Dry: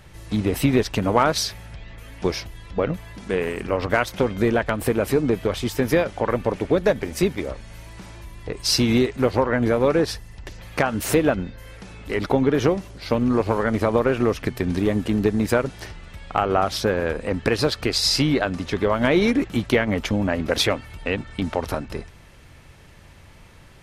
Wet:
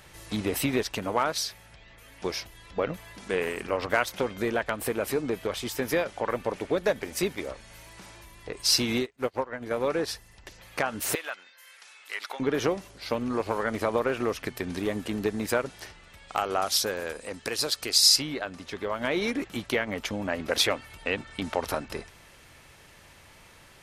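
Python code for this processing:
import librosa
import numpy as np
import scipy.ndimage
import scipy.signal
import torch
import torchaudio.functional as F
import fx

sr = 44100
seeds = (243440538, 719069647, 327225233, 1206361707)

y = fx.upward_expand(x, sr, threshold_db=-33.0, expansion=2.5, at=(9.0, 9.71))
y = fx.highpass(y, sr, hz=1300.0, slope=12, at=(11.15, 12.4))
y = fx.bass_treble(y, sr, bass_db=-2, treble_db=12, at=(16.28, 18.15), fade=0.02)
y = fx.low_shelf(y, sr, hz=270.0, db=-11.0)
y = fx.rider(y, sr, range_db=10, speed_s=2.0)
y = fx.high_shelf(y, sr, hz=6200.0, db=4.5)
y = y * librosa.db_to_amplitude(-6.5)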